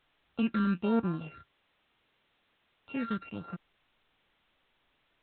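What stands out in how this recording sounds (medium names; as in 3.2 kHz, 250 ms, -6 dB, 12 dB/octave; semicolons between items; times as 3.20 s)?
a buzz of ramps at a fixed pitch in blocks of 32 samples; phasing stages 8, 1.2 Hz, lowest notch 760–3100 Hz; a quantiser's noise floor 12-bit, dither triangular; µ-law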